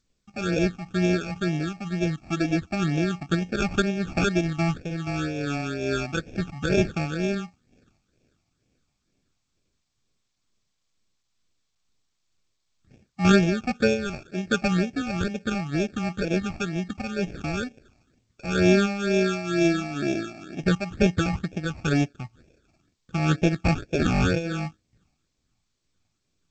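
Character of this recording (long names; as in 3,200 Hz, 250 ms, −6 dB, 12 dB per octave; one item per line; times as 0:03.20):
aliases and images of a low sample rate 1,000 Hz, jitter 0%
tremolo triangle 2.2 Hz, depth 60%
phaser sweep stages 8, 2.1 Hz, lowest notch 440–1,300 Hz
G.722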